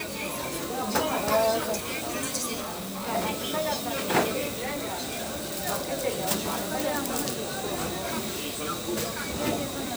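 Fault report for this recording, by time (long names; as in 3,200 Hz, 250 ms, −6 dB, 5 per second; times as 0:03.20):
0:02.60–0:03.08: clipping −31 dBFS
0:04.47–0:05.60: clipping −28 dBFS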